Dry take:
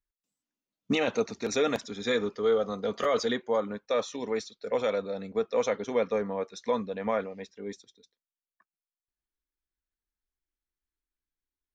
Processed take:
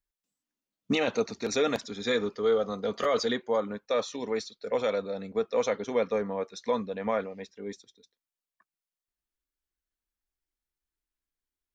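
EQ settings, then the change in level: dynamic bell 4.4 kHz, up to +5 dB, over -57 dBFS, Q 5.1; 0.0 dB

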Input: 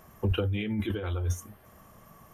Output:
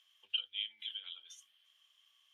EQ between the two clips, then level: ladder band-pass 3.3 kHz, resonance 85%; +3.0 dB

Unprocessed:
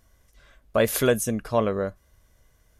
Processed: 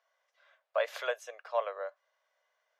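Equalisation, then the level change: steep high-pass 550 Hz 48 dB/octave; distance through air 190 m; peaking EQ 13 kHz +6 dB 0.38 oct; -5.5 dB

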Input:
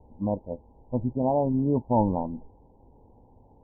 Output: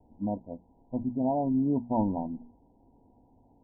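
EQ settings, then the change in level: rippled Chebyshev low-pass 1 kHz, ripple 9 dB; hum notches 60/120/180/240 Hz; 0.0 dB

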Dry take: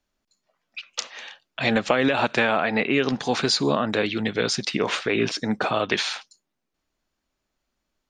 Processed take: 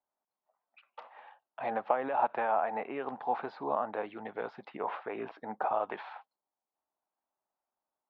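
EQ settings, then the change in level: band-pass filter 840 Hz, Q 3.3; distance through air 410 m; +1.0 dB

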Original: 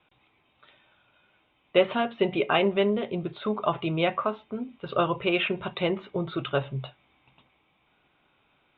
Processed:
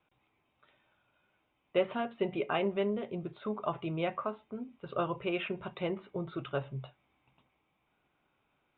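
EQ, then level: distance through air 280 m; -7.0 dB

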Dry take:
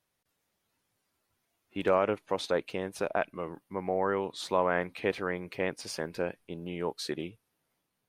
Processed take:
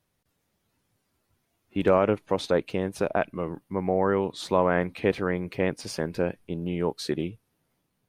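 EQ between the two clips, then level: bass shelf 340 Hz +10 dB; +2.0 dB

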